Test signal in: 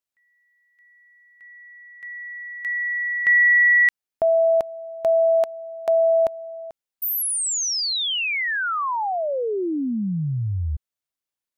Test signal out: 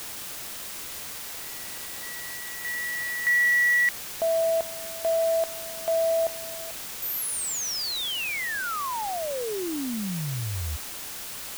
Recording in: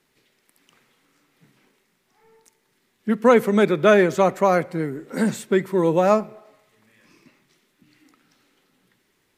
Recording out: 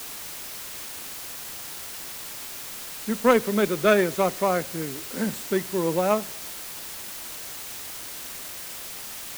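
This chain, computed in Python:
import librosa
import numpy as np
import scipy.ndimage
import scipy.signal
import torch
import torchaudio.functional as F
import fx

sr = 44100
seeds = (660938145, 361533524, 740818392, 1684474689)

y = fx.cheby_harmonics(x, sr, harmonics=(3,), levels_db=(-16,), full_scale_db=-2.0)
y = fx.quant_dither(y, sr, seeds[0], bits=6, dither='triangular')
y = y * 10.0 ** (-1.0 / 20.0)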